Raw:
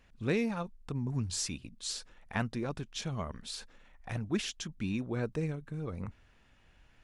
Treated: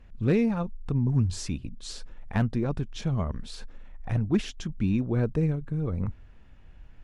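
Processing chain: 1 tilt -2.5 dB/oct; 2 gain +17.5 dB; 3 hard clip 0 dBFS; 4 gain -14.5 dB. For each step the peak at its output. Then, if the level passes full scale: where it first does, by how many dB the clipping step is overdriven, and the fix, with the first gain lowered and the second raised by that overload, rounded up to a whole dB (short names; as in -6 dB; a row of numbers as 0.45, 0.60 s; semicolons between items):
-13.5, +4.0, 0.0, -14.5 dBFS; step 2, 4.0 dB; step 2 +13.5 dB, step 4 -10.5 dB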